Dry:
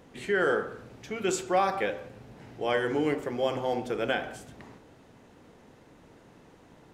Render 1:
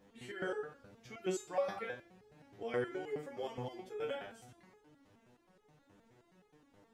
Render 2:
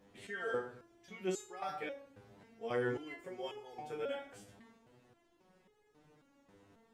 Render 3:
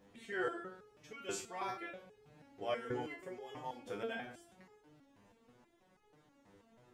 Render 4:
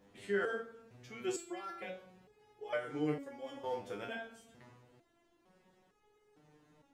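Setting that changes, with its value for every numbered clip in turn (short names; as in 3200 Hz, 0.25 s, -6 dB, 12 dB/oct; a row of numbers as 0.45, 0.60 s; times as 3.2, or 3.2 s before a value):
stepped resonator, rate: 9.5, 3.7, 6.2, 2.2 Hz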